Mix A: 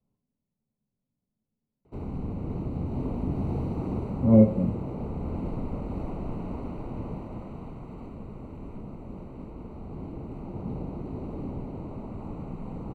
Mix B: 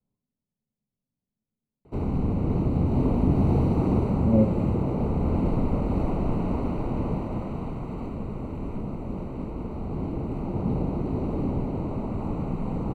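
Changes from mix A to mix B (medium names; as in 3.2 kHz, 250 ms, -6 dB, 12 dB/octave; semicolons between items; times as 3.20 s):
speech -4.0 dB; background +8.0 dB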